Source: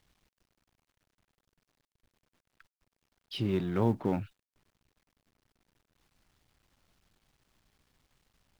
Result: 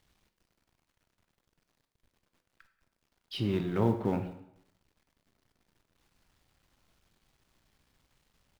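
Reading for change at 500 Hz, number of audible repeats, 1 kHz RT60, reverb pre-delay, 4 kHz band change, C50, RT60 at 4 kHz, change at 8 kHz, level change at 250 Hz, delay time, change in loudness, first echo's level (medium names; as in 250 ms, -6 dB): +0.5 dB, 1, 0.80 s, 14 ms, +0.5 dB, 10.5 dB, 0.65 s, no reading, 0.0 dB, 184 ms, 0.0 dB, -22.5 dB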